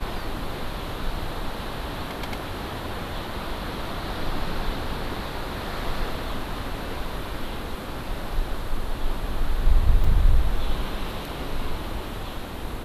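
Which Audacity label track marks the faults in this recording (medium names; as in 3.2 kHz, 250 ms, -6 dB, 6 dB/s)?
10.040000	10.040000	dropout 4.2 ms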